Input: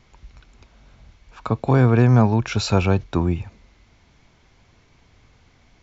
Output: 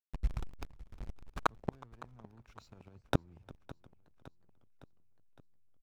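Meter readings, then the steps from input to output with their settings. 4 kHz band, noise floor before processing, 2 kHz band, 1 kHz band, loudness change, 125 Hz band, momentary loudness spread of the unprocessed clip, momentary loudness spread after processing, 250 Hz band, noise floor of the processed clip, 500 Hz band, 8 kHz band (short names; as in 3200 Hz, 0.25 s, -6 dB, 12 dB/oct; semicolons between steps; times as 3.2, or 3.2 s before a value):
-18.5 dB, -57 dBFS, -15.5 dB, -13.5 dB, -21.5 dB, -24.5 dB, 12 LU, 21 LU, -23.0 dB, -66 dBFS, -21.0 dB, n/a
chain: high shelf 6200 Hz +7.5 dB; reverse; compressor 16:1, threshold -26 dBFS, peak gain reduction 17 dB; reverse; backlash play -35 dBFS; flipped gate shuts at -25 dBFS, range -42 dB; on a send: feedback echo 0.561 s, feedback 58%, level -19 dB; on the sum: warbling echo 0.362 s, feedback 33%, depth 208 cents, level -22.5 dB; gain +13.5 dB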